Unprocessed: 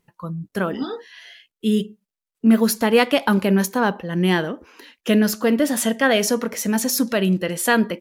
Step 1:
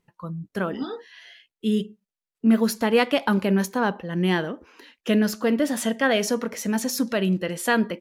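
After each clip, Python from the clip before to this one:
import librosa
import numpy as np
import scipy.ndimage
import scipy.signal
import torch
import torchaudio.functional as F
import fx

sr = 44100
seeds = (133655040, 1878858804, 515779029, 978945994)

y = fx.high_shelf(x, sr, hz=9300.0, db=-8.0)
y = y * 10.0 ** (-3.5 / 20.0)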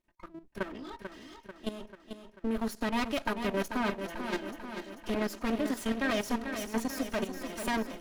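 y = fx.lower_of_two(x, sr, delay_ms=3.2)
y = fx.level_steps(y, sr, step_db=13)
y = fx.echo_feedback(y, sr, ms=441, feedback_pct=59, wet_db=-8.0)
y = y * 10.0 ** (-3.5 / 20.0)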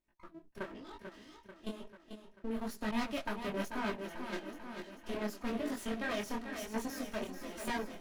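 y = fx.detune_double(x, sr, cents=36)
y = y * 10.0 ** (-2.0 / 20.0)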